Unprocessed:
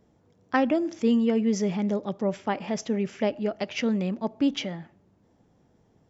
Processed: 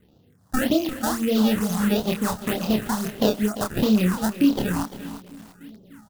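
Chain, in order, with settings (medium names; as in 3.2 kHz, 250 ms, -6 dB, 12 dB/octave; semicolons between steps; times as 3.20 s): rattle on loud lows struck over -41 dBFS, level -24 dBFS; in parallel at -4 dB: crossover distortion -43.5 dBFS; on the sum: band-stop 930 Hz, Q 5.3; on a send: filtered feedback delay 298 ms, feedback 76%, low-pass 1.1 kHz, level -23 dB; on the sum: decimation with a swept rate 24×, swing 160% 2.2 Hz; peaking EQ 2.3 kHz -8 dB 0.21 oct; compression 3:1, threshold -23 dBFS, peak gain reduction 7.5 dB; bass shelf 140 Hz -3.5 dB; doubling 28 ms -3.5 dB; phase shifter stages 4, 1.6 Hz, lowest notch 400–1800 Hz; bit-crushed delay 345 ms, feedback 35%, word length 7-bit, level -12.5 dB; trim +5.5 dB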